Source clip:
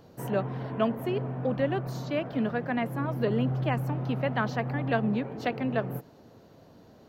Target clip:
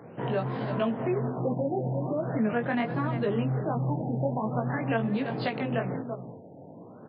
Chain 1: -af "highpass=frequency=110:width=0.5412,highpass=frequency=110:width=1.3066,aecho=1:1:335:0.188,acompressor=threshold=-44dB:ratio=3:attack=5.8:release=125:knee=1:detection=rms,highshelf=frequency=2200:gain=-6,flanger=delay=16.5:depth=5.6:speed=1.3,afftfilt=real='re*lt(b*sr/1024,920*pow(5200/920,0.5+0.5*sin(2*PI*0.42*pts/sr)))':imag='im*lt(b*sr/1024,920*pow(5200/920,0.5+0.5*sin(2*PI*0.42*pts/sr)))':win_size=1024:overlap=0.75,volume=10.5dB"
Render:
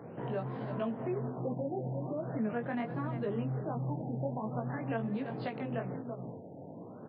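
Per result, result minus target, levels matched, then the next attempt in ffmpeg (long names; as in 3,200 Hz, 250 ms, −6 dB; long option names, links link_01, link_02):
downward compressor: peak gain reduction +6.5 dB; 4,000 Hz band −5.5 dB
-af "highpass=frequency=110:width=0.5412,highpass=frequency=110:width=1.3066,aecho=1:1:335:0.188,acompressor=threshold=-34dB:ratio=3:attack=5.8:release=125:knee=1:detection=rms,highshelf=frequency=2200:gain=-6,flanger=delay=16.5:depth=5.6:speed=1.3,afftfilt=real='re*lt(b*sr/1024,920*pow(5200/920,0.5+0.5*sin(2*PI*0.42*pts/sr)))':imag='im*lt(b*sr/1024,920*pow(5200/920,0.5+0.5*sin(2*PI*0.42*pts/sr)))':win_size=1024:overlap=0.75,volume=10.5dB"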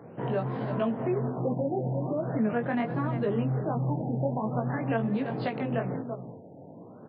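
4,000 Hz band −5.5 dB
-af "highpass=frequency=110:width=0.5412,highpass=frequency=110:width=1.3066,aecho=1:1:335:0.188,acompressor=threshold=-34dB:ratio=3:attack=5.8:release=125:knee=1:detection=rms,highshelf=frequency=2200:gain=2.5,flanger=delay=16.5:depth=5.6:speed=1.3,afftfilt=real='re*lt(b*sr/1024,920*pow(5200/920,0.5+0.5*sin(2*PI*0.42*pts/sr)))':imag='im*lt(b*sr/1024,920*pow(5200/920,0.5+0.5*sin(2*PI*0.42*pts/sr)))':win_size=1024:overlap=0.75,volume=10.5dB"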